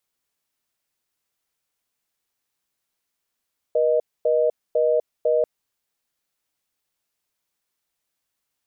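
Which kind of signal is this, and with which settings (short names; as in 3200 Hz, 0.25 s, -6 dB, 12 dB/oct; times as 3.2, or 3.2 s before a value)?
call progress tone reorder tone, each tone -19 dBFS 1.69 s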